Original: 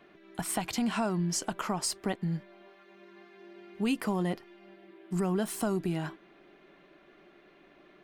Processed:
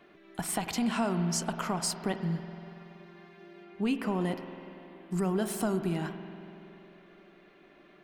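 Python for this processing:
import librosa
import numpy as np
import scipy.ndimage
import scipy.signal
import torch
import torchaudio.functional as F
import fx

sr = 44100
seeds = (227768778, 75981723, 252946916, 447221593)

y = fx.high_shelf(x, sr, hz=fx.line((3.63, 6100.0), (4.2, 3900.0)), db=-10.5, at=(3.63, 4.2), fade=0.02)
y = fx.rev_spring(y, sr, rt60_s=3.0, pass_ms=(47,), chirp_ms=75, drr_db=8.0)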